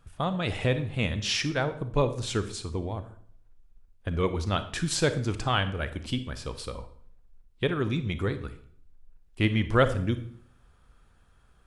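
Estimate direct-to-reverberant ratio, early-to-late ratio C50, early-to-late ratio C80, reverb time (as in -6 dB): 11.0 dB, 12.5 dB, 16.5 dB, 0.55 s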